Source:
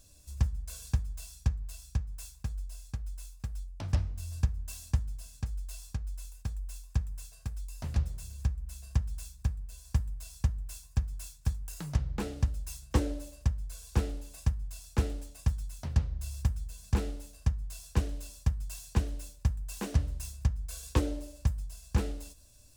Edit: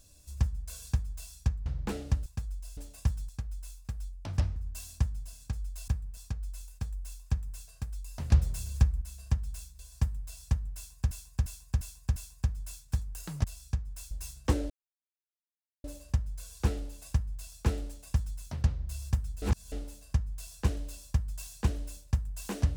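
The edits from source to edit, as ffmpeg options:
-filter_complex "[0:a]asplit=20[a][b][c][d][e][f][g][h][i][j][k][l][m][n][o][p][q][r][s][t];[a]atrim=end=1.662[u];[b]atrim=start=11.968:end=12.572[v];[c]atrim=start=2.328:end=2.842[w];[d]atrim=start=15.178:end=15.702[x];[e]atrim=start=2.838:end=4.112[y];[f]atrim=start=4.488:end=5.812[z];[g]atrim=start=9.428:end=9.722[aa];[h]atrim=start=5.808:end=7.962[ab];[i]atrim=start=7.958:end=8.662,asetpts=PTS-STARTPTS,volume=6.5dB[ac];[j]atrim=start=8.658:end=9.432[ad];[k]atrim=start=9.718:end=11.042[ae];[l]atrim=start=10.688:end=11.042[af];[m]atrim=start=10.688:end=11.042[ag];[n]atrim=start=10.688:end=11.042[ah];[o]atrim=start=10.688:end=11.972[ai];[p]atrim=start=1.658:end=2.332[aj];[q]atrim=start=12.568:end=13.16,asetpts=PTS-STARTPTS,afade=t=out:st=0.588:d=0.004:c=hsin,apad=pad_dur=1.14[ak];[r]atrim=start=13.16:end=16.742,asetpts=PTS-STARTPTS,afade=t=in:d=0.004:c=hsin[al];[s]atrim=start=16.738:end=17.042,asetpts=PTS-STARTPTS,areverse[am];[t]atrim=start=17.038[an];[u][v]acrossfade=d=0.004:c1=hsin:c2=hsin[ao];[ao][w]acrossfade=d=0.004:c1=hsin:c2=hsin[ap];[ap][x]acrossfade=d=0.004:c1=hsin:c2=hsin[aq];[aq][y]acrossfade=d=0.004:c1=hsin:c2=hsin[ar];[ar][z]acrossfade=d=0.004:c1=hsin:c2=hsin[as];[as][aa]acrossfade=d=0.004:c1=hsin:c2=hsin[at];[at][ab]acrossfade=d=0.004:c1=hsin:c2=hsin[au];[au][ac]acrossfade=d=0.004:c1=hsin:c2=hsin[av];[av][ad]acrossfade=d=0.004:c1=hsin:c2=hsin[aw];[aw][ae]acrossfade=d=0.004:c1=hsin:c2=hsin[ax];[ax][af]acrossfade=d=0.004:c1=hsin:c2=hsin[ay];[ay][ag]acrossfade=d=0.004:c1=hsin:c2=hsin[az];[az][ah]acrossfade=d=0.004:c1=hsin:c2=hsin[ba];[ba][ai]acrossfade=d=0.004:c1=hsin:c2=hsin[bb];[bb][aj]acrossfade=d=0.004:c1=hsin:c2=hsin[bc];[ak][al]concat=n=2:v=0:a=1[bd];[bc][bd]acrossfade=d=0.004:c1=hsin:c2=hsin[be];[be][am]acrossfade=d=0.004:c1=hsin:c2=hsin[bf];[bf][an]acrossfade=d=0.004:c1=hsin:c2=hsin"

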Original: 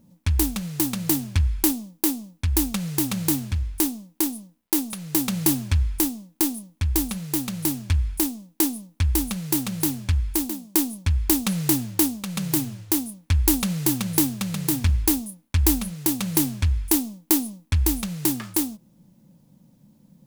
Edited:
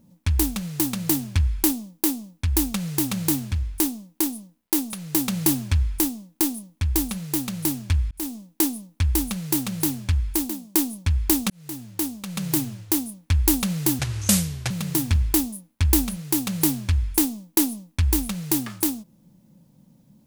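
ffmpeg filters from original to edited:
-filter_complex "[0:a]asplit=5[a][b][c][d][e];[a]atrim=end=8.11,asetpts=PTS-STARTPTS,afade=t=out:st=8.106:d=0.004:c=hsin[f];[b]atrim=start=8.11:end=11.5,asetpts=PTS-STARTPTS,afade=t=in:d=0.25,afade=t=out:st=3.386:d=0.004:c=hsin[g];[c]atrim=start=11.5:end=13.994,asetpts=PTS-STARTPTS,afade=t=in:d=1.02[h];[d]atrim=start=13.99:end=14.44,asetpts=PTS-STARTPTS,asetrate=27783,aresample=44100[i];[e]atrim=start=14.436[j];[f][g][h]concat=n=3:v=0:a=1[k];[k][i]acrossfade=d=0.004:c1=hsin:c2=hsin[l];[l][j]acrossfade=d=0.004:c1=hsin:c2=hsin"

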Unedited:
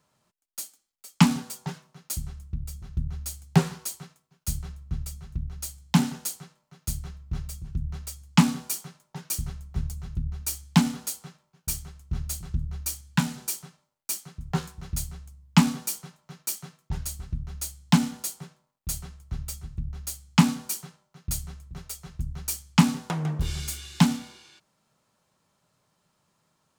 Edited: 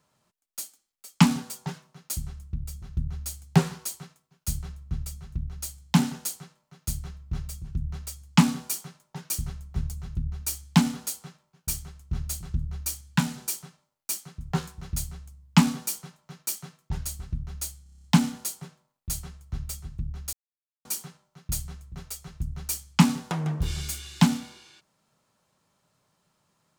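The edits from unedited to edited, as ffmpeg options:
-filter_complex "[0:a]asplit=10[a][b][c][d][e][f][g][h][i][j];[a]atrim=end=17.862[k];[b]atrim=start=17.828:end=17.862[l];[c]atrim=start=17.828:end=17.862[m];[d]atrim=start=17.828:end=17.862[n];[e]atrim=start=17.828:end=17.862[o];[f]atrim=start=17.828:end=17.862[p];[g]atrim=start=17.828:end=17.862[q];[h]atrim=start=17.828:end=20.12,asetpts=PTS-STARTPTS,afade=t=out:st=2.288:d=0.004:c=hsin[r];[i]atrim=start=20.12:end=20.64,asetpts=PTS-STARTPTS,volume=0[s];[j]atrim=start=20.64,asetpts=PTS-STARTPTS,afade=t=in:d=0.004:c=hsin[t];[k][l]acrossfade=d=0.004:c1=hsin:c2=hsin[u];[u][m]acrossfade=d=0.004:c1=hsin:c2=hsin[v];[v][n]acrossfade=d=0.004:c1=hsin:c2=hsin[w];[w][o]acrossfade=d=0.004:c1=hsin:c2=hsin[x];[x][p]acrossfade=d=0.004:c1=hsin:c2=hsin[y];[y][q]acrossfade=d=0.004:c1=hsin:c2=hsin[z];[r][s][t]concat=n=3:v=0:a=1[aa];[z][aa]acrossfade=d=0.004:c1=hsin:c2=hsin"

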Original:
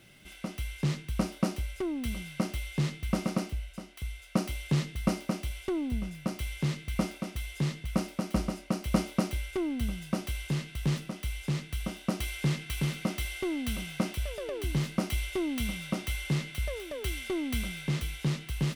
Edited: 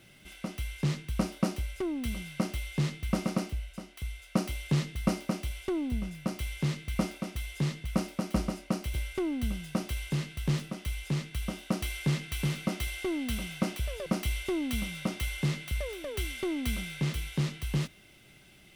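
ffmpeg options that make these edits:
-filter_complex "[0:a]asplit=3[a][b][c];[a]atrim=end=8.942[d];[b]atrim=start=9.318:end=14.442[e];[c]atrim=start=14.928[f];[d][e]acrossfade=d=0.004:c1=hsin:c2=hsin[g];[g][f]acrossfade=d=0.004:c1=hsin:c2=hsin"

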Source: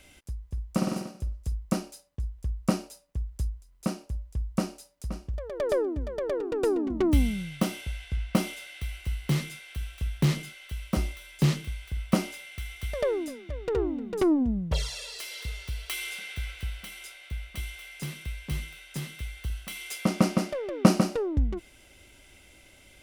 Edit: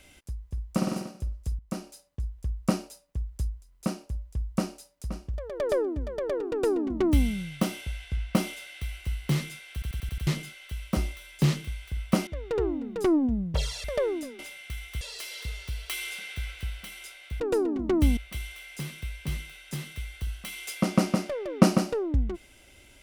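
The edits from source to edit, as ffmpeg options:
-filter_complex "[0:a]asplit=14[a][b][c][d][e][f][g][h][i][j][k][l][m][n];[a]atrim=end=1.59,asetpts=PTS-STARTPTS,afade=t=out:st=1.586:d=0.004:c=hsin:silence=0.251189[o];[b]atrim=start=1.59:end=9.822,asetpts=PTS-STARTPTS,afade=t=in:d=0.48:silence=0.251189[p];[c]atrim=start=9.728:end=9.822[q];[d]atrim=start=9.728:end=9.822[r];[e]atrim=start=9.728:end=9.822[s];[f]atrim=start=9.728:end=9.822[t];[g]atrim=start=9.728:end=9.822[u];[h]atrim=start=10.268:end=12.272[v];[i]atrim=start=13.438:end=15.012[w];[j]atrim=start=12.888:end=13.442[x];[k]atrim=start=12.268:end=12.892[y];[l]atrim=start=15.008:end=17.402[z];[m]atrim=start=6.508:end=7.282[aa];[n]atrim=start=17.398[ab];[o][p]concat=n=2:v=0:a=1[ac];[ac][q]acrossfade=d=0.004:c1=hsin:c2=hsin[ad];[ad][r]acrossfade=d=0.004:c1=hsin:c2=hsin[ae];[ae][s]acrossfade=d=0.004:c1=hsin:c2=hsin[af];[af][t]acrossfade=d=0.004:c1=hsin:c2=hsin[ag];[ag][u]acrossfade=d=0.004:c1=hsin:c2=hsin[ah];[ah][v]acrossfade=d=0.004:c1=hsin:c2=hsin[ai];[ai][w]acrossfade=d=0.004:c1=hsin:c2=hsin[aj];[aj][x]acrossfade=d=0.004:c1=hsin:c2=hsin[ak];[ak][y]acrossfade=d=0.004:c1=hsin:c2=hsin[al];[al][z]acrossfade=d=0.004:c1=hsin:c2=hsin[am];[am][aa]acrossfade=d=0.004:c1=hsin:c2=hsin[an];[an][ab]acrossfade=d=0.004:c1=hsin:c2=hsin"

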